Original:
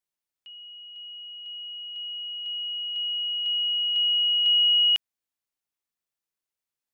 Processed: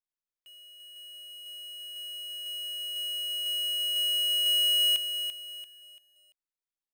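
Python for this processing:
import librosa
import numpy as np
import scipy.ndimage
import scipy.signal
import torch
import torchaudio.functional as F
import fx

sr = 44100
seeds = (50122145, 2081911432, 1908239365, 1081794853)

y = fx.dead_time(x, sr, dead_ms=0.055)
y = fx.echo_crushed(y, sr, ms=340, feedback_pct=35, bits=9, wet_db=-8.0)
y = y * 10.0 ** (-7.0 / 20.0)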